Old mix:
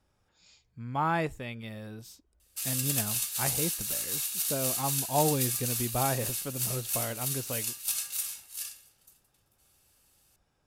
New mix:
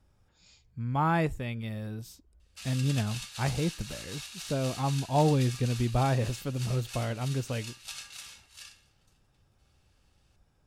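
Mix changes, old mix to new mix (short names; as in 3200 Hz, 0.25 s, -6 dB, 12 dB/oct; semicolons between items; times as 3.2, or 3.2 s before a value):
background: add BPF 590–4200 Hz; master: add low shelf 190 Hz +10 dB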